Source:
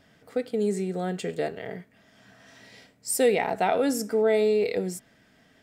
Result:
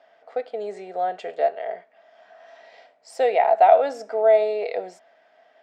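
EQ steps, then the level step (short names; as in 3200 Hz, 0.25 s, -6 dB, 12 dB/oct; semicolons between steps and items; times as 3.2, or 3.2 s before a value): resonant high-pass 670 Hz, resonance Q 4.9; air absorption 170 m; 0.0 dB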